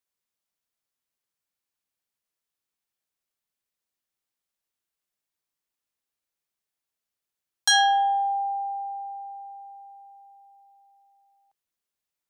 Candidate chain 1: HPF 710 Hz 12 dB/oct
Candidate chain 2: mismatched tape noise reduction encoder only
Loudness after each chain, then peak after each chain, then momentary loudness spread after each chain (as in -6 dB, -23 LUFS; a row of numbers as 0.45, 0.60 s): -24.5, -24.0 LUFS; -11.0, -5.5 dBFS; 21, 22 LU